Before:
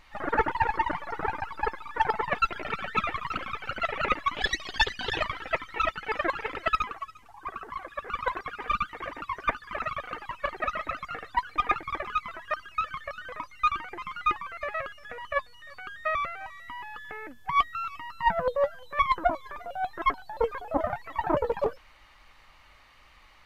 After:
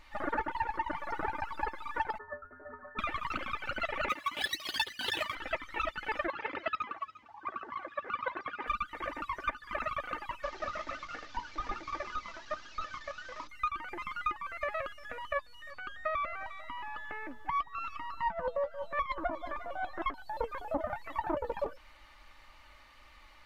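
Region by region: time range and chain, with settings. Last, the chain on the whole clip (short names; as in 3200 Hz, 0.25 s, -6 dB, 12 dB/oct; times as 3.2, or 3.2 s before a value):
2.18–2.99 rippled Chebyshev low-pass 1800 Hz, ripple 6 dB + resonator 84 Hz, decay 0.23 s, harmonics odd, mix 100% + three-band squash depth 40%
4.09–5.35 median filter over 5 samples + HPF 99 Hz + high shelf 2700 Hz +10.5 dB
6.27–8.67 BPF 120–7600 Hz + air absorption 130 m
10.43–13.49 delta modulation 32 kbps, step -39 dBFS + notches 60/120/180/240/300/360/420 Hz + flange 1.3 Hz, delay 6.3 ms, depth 6.1 ms, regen -63%
15.71–20.14 high shelf 7200 Hz -11.5 dB + echo with dull and thin repeats by turns 0.178 s, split 1100 Hz, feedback 63%, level -14 dB
whole clip: comb 3.4 ms, depth 43%; compressor 6:1, threshold -28 dBFS; gain -2 dB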